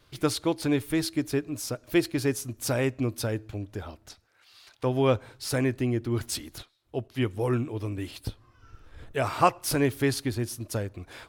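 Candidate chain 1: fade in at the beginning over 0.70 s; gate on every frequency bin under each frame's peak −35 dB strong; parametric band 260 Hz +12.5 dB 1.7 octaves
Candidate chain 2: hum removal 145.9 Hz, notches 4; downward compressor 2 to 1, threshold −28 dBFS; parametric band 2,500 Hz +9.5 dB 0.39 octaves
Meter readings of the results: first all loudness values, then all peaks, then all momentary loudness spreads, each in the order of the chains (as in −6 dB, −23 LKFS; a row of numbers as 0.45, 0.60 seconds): −20.5, −31.5 LKFS; −2.5, −13.0 dBFS; 13, 11 LU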